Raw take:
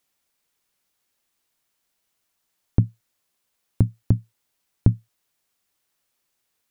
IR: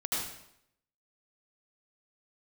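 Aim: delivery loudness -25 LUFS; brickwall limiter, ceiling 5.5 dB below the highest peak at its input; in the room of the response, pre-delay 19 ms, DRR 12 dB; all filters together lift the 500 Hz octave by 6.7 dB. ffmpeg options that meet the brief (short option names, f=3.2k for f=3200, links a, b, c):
-filter_complex "[0:a]equalizer=f=500:t=o:g=9,alimiter=limit=-5dB:level=0:latency=1,asplit=2[a][b];[1:a]atrim=start_sample=2205,adelay=19[c];[b][c]afir=irnorm=-1:irlink=0,volume=-18dB[d];[a][d]amix=inputs=2:normalize=0,volume=3dB"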